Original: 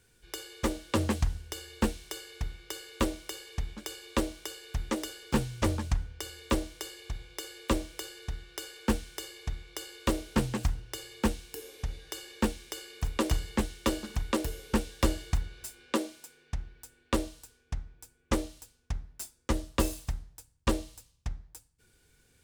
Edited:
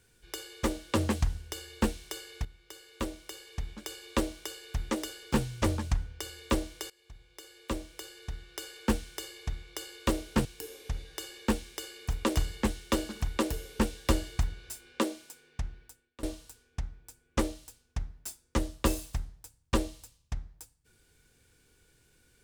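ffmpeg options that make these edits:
-filter_complex "[0:a]asplit=5[a][b][c][d][e];[a]atrim=end=2.45,asetpts=PTS-STARTPTS,afade=t=out:st=2.446:d=0.004:c=hsin:silence=0.237137[f];[b]atrim=start=2.45:end=6.9,asetpts=PTS-STARTPTS,afade=t=in:d=1.67:silence=0.237137,afade=t=out:st=4.446:d=0.004:c=hsin:silence=0.1[g];[c]atrim=start=6.9:end=10.452,asetpts=PTS-STARTPTS,afade=t=in:d=1.87:silence=0.1[h];[d]atrim=start=11.388:end=17.17,asetpts=PTS-STARTPTS,afade=t=out:st=5.362:d=0.42:c=qua:silence=0.0841395[i];[e]atrim=start=17.17,asetpts=PTS-STARTPTS,afade=t=in:d=0.004:c=hsin:silence=0.0841395[j];[f][g][h]concat=n=3:v=0:a=1[k];[i][j]concat=n=2:v=0:a=1[l];[k][l]acrossfade=d=0.004:c1=hsin:c2=hsin"

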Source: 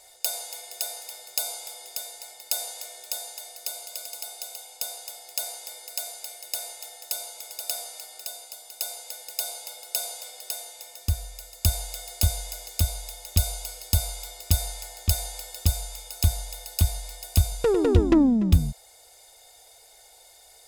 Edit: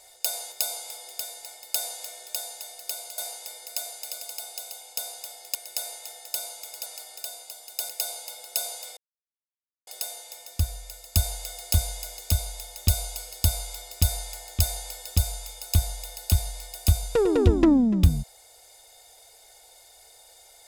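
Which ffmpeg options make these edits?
-filter_complex "[0:a]asplit=8[a][b][c][d][e][f][g][h];[a]atrim=end=0.522[i];[b]atrim=start=1.288:end=3.952[j];[c]atrim=start=5.388:end=6.322[k];[d]atrim=start=3.948:end=5.392[l];[e]atrim=start=6.318:end=7.632[m];[f]atrim=start=7.878:end=8.912[n];[g]atrim=start=9.278:end=10.36,asetpts=PTS-STARTPTS,afade=t=out:st=1.078:d=0.004:c=hsin,apad=pad_dur=0.9[o];[h]atrim=start=10.36,asetpts=PTS-STARTPTS,afade=t=in:d=0.004:c=hsin[p];[i][j]acrossfade=d=0.004:c1=hsin:c2=hsin[q];[q][k]acrossfade=d=0.004:c1=hsin:c2=hsin[r];[r][l]acrossfade=d=0.004:c1=hsin:c2=hsin[s];[s][m]acrossfade=d=0.004:c1=hsin:c2=hsin[t];[t][n]acrossfade=d=0.004:c1=hsin:c2=hsin[u];[o][p]concat=n=2:v=0:a=1[v];[u][v]acrossfade=d=0.004:c1=hsin:c2=hsin"

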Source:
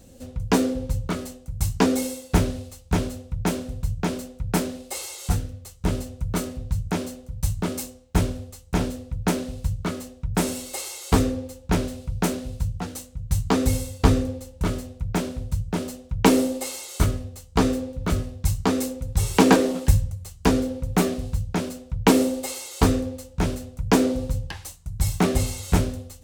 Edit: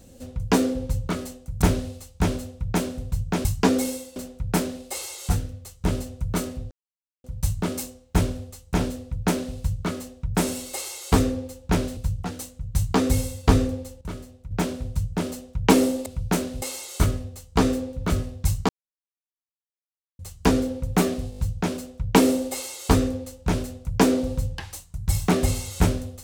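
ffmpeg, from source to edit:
-filter_complex "[0:a]asplit=17[a][b][c][d][e][f][g][h][i][j][k][l][m][n][o][p][q];[a]atrim=end=1.622[r];[b]atrim=start=2.328:end=4.162[s];[c]atrim=start=1.618:end=2.332[t];[d]atrim=start=4.158:end=6.71,asetpts=PTS-STARTPTS,afade=t=out:st=2.548:d=0.004:c=hsin[u];[e]atrim=start=6.71:end=7.24,asetpts=PTS-STARTPTS,volume=0[v];[f]atrim=start=7.24:end=11.972,asetpts=PTS-STARTPTS,afade=t=in:d=0.004:c=hsin[w];[g]atrim=start=12.528:end=14.572[x];[h]atrim=start=14.568:end=15.072,asetpts=PTS-STARTPTS,volume=-9.5dB[y];[i]atrim=start=15.068:end=16.622[z];[j]atrim=start=11.968:end=12.532[aa];[k]atrim=start=16.618:end=18.69,asetpts=PTS-STARTPTS,afade=t=out:st=2.068:d=0.004:c=hsin[ab];[l]atrim=start=18.69:end=20.19,asetpts=PTS-STARTPTS,volume=0[ac];[m]atrim=start=20.19:end=21.322,asetpts=PTS-STARTPTS,afade=t=in:d=0.004:c=hsin[ad];[n]atrim=start=21.298:end=21.322[ae];[o]atrim=start=21.298:end=21.322[af];[p]atrim=start=21.298:end=21.322[ag];[q]atrim=start=21.298[ah];[r][s]acrossfade=d=0.004:c1=hsin:c2=hsin[ai];[ai][t]acrossfade=d=0.004:c1=hsin:c2=hsin[aj];[u][v][w]concat=n=3:v=0:a=1[ak];[aj][ak]acrossfade=d=0.004:c1=hsin:c2=hsin[al];[al][x]acrossfade=d=0.004:c1=hsin:c2=hsin[am];[am][y]acrossfade=d=0.004:c1=hsin:c2=hsin[an];[an][z]acrossfade=d=0.004:c1=hsin:c2=hsin[ao];[ao][aa]acrossfade=d=0.004:c1=hsin:c2=hsin[ap];[ab][ac][ad]concat=n=3:v=0:a=1[aq];[ap][aq]acrossfade=d=0.004:c1=hsin:c2=hsin[ar];[ar][ae]acrossfade=d=0.004:c1=hsin:c2=hsin[as];[as][af]acrossfade=d=0.004:c1=hsin:c2=hsin[at];[at][ag]acrossfade=d=0.004:c1=hsin:c2=hsin[au];[au][ah]acrossfade=d=0.004:c1=hsin:c2=hsin"

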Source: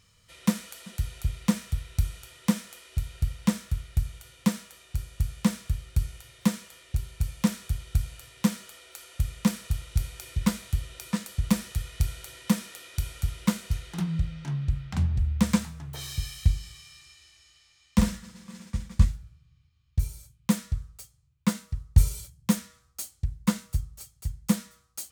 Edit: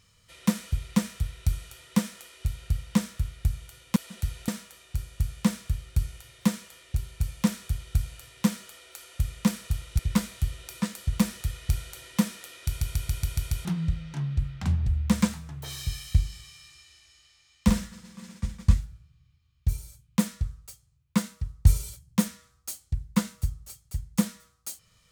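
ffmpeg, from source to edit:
-filter_complex "[0:a]asplit=12[a][b][c][d][e][f][g][h][i][j][k][l];[a]atrim=end=0.722[m];[b]atrim=start=1.238:end=4.482[n];[c]atrim=start=0.718:end=1.242[o];[d]atrim=start=4.478:end=9.992[p];[e]atrim=start=10.298:end=13.122[q];[f]atrim=start=12.978:end=13.122[r];[g]atrim=start=12.978:end=13.122[s];[h]atrim=start=12.978:end=13.122[t];[i]atrim=start=12.978:end=13.122[u];[j]atrim=start=12.978:end=13.122[v];[k]atrim=start=12.978:end=13.122[w];[l]atrim=start=13.958[x];[m][n]acrossfade=d=0.004:c1=hsin:c2=hsin[y];[y][o]acrossfade=d=0.004:c1=hsin:c2=hsin[z];[z][p]acrossfade=d=0.004:c1=hsin:c2=hsin[aa];[aa][q]acrossfade=d=0.004:c1=hsin:c2=hsin[ab];[ab][r]acrossfade=d=0.004:c1=hsin:c2=hsin[ac];[ac][s]acrossfade=d=0.004:c1=hsin:c2=hsin[ad];[ad][t]acrossfade=d=0.004:c1=hsin:c2=hsin[ae];[ae][u]acrossfade=d=0.004:c1=hsin:c2=hsin[af];[af][v]acrossfade=d=0.004:c1=hsin:c2=hsin[ag];[ag][w]acrossfade=d=0.004:c1=hsin:c2=hsin[ah];[ah][x]acrossfade=d=0.004:c1=hsin:c2=hsin"

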